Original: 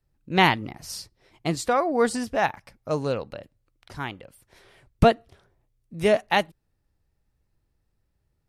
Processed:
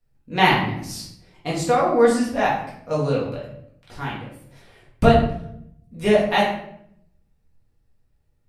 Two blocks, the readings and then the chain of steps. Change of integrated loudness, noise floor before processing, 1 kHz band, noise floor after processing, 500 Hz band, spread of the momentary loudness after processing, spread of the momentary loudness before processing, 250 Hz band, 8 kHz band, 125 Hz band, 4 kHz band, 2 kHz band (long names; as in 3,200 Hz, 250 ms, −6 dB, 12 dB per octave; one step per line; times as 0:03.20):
+3.5 dB, −74 dBFS, +3.5 dB, −65 dBFS, +4.5 dB, 18 LU, 17 LU, +5.0 dB, +1.5 dB, +5.0 dB, +2.5 dB, +2.5 dB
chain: rectangular room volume 150 cubic metres, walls mixed, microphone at 1.8 metres
level −4 dB